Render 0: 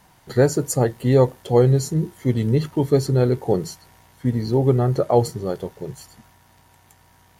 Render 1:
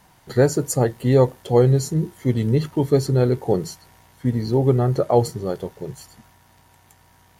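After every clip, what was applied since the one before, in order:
no processing that can be heard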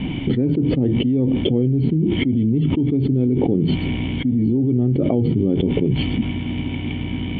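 dynamic equaliser 2,500 Hz, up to −4 dB, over −43 dBFS, Q 1
formant resonators in series i
envelope flattener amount 100%
level +3 dB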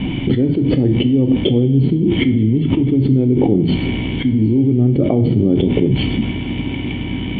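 coupled-rooms reverb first 0.48 s, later 4.6 s, from −18 dB, DRR 8 dB
level +3.5 dB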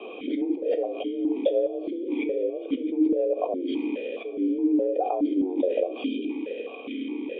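frequency shifter +180 Hz
time-frequency box erased 0:06.05–0:06.30, 760–2,300 Hz
formant filter that steps through the vowels 4.8 Hz
level −2 dB

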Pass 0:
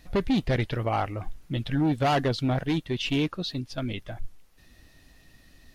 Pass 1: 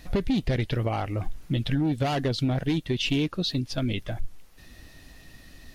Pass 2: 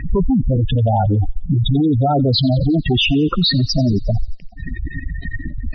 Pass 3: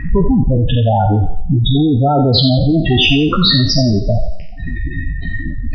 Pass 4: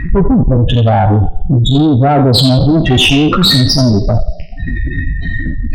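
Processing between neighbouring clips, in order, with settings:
downward compressor, threshold −28 dBFS, peak gain reduction 7.5 dB; dynamic equaliser 1,100 Hz, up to −6 dB, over −46 dBFS, Q 0.74; level +6.5 dB
fuzz pedal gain 44 dB, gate −50 dBFS; gate on every frequency bin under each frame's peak −10 dB strong; delay with a high-pass on its return 89 ms, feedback 63%, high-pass 3,100 Hz, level −18 dB; level +1 dB
peak hold with a decay on every bin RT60 0.64 s; level +2 dB
tube saturation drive 10 dB, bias 0.3; level +6 dB

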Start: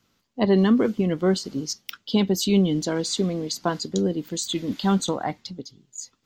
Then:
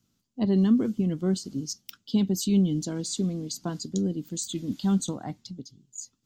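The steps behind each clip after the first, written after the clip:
octave-band graphic EQ 125/250/500/1,000/2,000/4,000/8,000 Hz +4/+3/−7/−6/−9/−3/+4 dB
level −4.5 dB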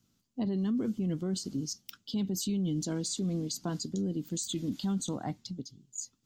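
brickwall limiter −25 dBFS, peak gain reduction 12 dB

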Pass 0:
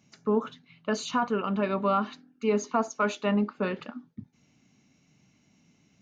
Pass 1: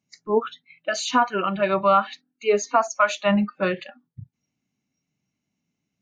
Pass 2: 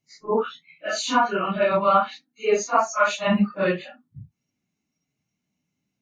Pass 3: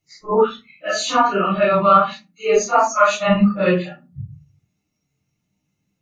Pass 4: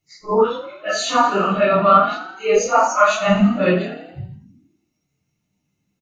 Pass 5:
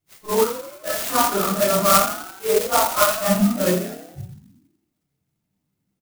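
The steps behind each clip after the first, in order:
noise reduction from a noise print of the clip's start 24 dB; level +8.5 dB
random phases in long frames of 100 ms
convolution reverb RT60 0.25 s, pre-delay 3 ms, DRR 1 dB; level +1.5 dB
echo with shifted repeats 83 ms, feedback 57%, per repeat +34 Hz, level −12 dB
converter with an unsteady clock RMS 0.095 ms; level −3 dB

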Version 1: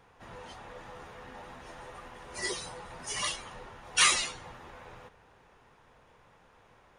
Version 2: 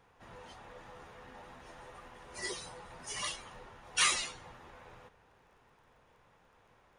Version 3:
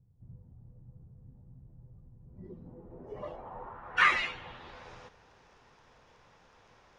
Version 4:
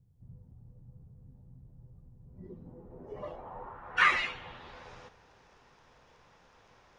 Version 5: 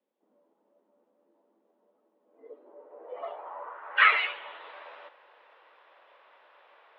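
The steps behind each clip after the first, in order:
surface crackle 18 per second −55 dBFS; level −5 dB
low-pass filter sweep 130 Hz → 5,600 Hz, 0:02.19–0:04.89; level +4 dB
hum removal 111.3 Hz, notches 34
single-sideband voice off tune +82 Hz 340–3,500 Hz; level +4 dB

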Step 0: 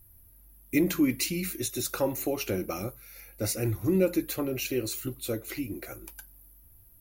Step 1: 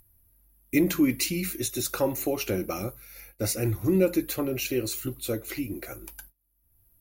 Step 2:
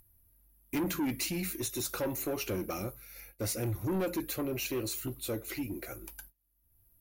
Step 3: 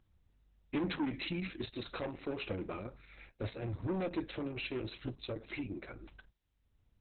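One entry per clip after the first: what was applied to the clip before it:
noise gate −49 dBFS, range −28 dB; upward compression, threshold −47 dBFS; level +2 dB
soft clipping −25 dBFS, distortion −9 dB; level −3 dB
level −1.5 dB; Opus 6 kbit/s 48,000 Hz

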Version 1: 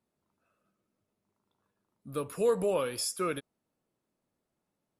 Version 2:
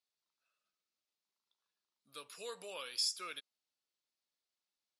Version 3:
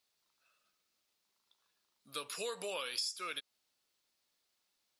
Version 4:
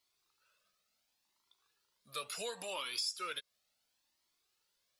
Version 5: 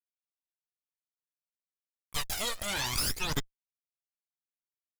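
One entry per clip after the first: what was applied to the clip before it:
resonant band-pass 4,400 Hz, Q 1.8; level +4 dB
downward compressor 5 to 1, threshold −47 dBFS, peak gain reduction 14.5 dB; level +10.5 dB
in parallel at −10 dB: soft clipping −35 dBFS, distortion −13 dB; on the sum: flanger whose copies keep moving one way rising 0.71 Hz; level +2.5 dB
centre clipping without the shift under −48 dBFS; harmonic generator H 8 −6 dB, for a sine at −24.5 dBFS; phase shifter 0.59 Hz, delay 1.7 ms, feedback 64%

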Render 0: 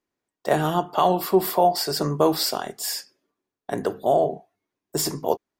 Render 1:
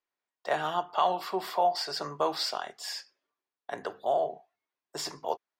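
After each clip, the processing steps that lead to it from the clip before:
three-way crossover with the lows and the highs turned down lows −16 dB, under 600 Hz, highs −19 dB, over 5,900 Hz
level −3.5 dB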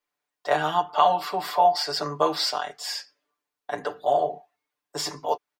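comb filter 6.8 ms, depth 94%
level +3 dB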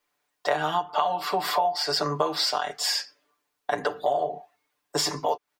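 downward compressor 6 to 1, threshold −30 dBFS, peak gain reduction 15.5 dB
level +8 dB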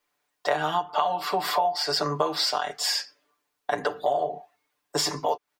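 no processing that can be heard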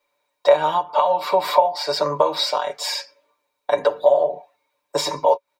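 hollow resonant body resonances 560/940/2,300/3,800 Hz, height 18 dB, ringing for 55 ms
level −1 dB

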